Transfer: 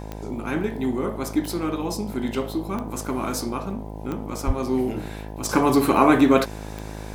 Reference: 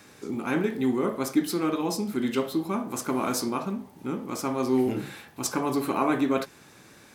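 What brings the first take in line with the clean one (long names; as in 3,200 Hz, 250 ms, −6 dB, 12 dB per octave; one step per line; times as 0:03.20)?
click removal
hum removal 52.8 Hz, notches 19
0:04.46–0:04.58: high-pass filter 140 Hz 24 dB per octave
level 0 dB, from 0:05.49 −8.5 dB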